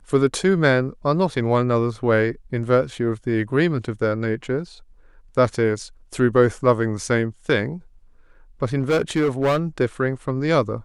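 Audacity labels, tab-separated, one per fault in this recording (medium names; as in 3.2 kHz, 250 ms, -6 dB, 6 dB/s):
8.790000	9.590000	clipped -15 dBFS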